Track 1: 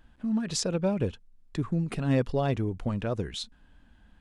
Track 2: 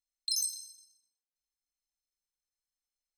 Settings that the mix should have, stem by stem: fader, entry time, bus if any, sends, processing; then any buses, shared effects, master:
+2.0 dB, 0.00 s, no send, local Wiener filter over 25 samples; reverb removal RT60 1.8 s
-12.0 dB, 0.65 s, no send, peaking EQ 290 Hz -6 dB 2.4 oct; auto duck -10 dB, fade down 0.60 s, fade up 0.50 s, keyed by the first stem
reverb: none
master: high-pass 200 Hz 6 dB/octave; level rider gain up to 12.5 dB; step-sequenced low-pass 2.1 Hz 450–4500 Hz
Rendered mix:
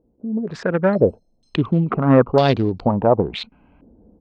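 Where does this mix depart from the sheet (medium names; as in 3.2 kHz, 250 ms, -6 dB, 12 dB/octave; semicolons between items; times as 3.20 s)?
stem 1: missing reverb removal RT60 1.8 s; stem 2 -12.0 dB -> -2.0 dB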